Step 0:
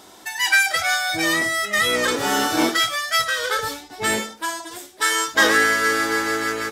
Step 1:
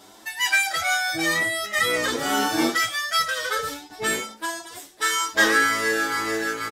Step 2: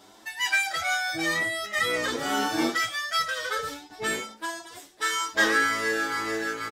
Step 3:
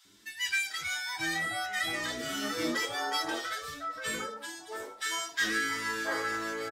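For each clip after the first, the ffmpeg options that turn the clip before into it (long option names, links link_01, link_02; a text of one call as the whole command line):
ffmpeg -i in.wav -filter_complex "[0:a]asplit=2[link_01][link_02];[link_02]adelay=7.7,afreqshift=2.1[link_03];[link_01][link_03]amix=inputs=2:normalize=1" out.wav
ffmpeg -i in.wav -af "equalizer=frequency=12000:width_type=o:width=1.1:gain=-5.5,volume=-3.5dB" out.wav
ffmpeg -i in.wav -filter_complex "[0:a]acrossover=split=380|1400[link_01][link_02][link_03];[link_01]adelay=50[link_04];[link_02]adelay=690[link_05];[link_04][link_05][link_03]amix=inputs=3:normalize=0,volume=-4dB" out.wav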